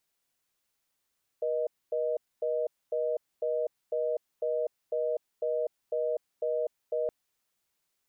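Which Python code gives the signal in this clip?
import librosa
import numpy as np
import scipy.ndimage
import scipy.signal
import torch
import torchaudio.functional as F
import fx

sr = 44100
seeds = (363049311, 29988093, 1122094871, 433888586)

y = fx.call_progress(sr, length_s=5.67, kind='reorder tone', level_db=-29.5)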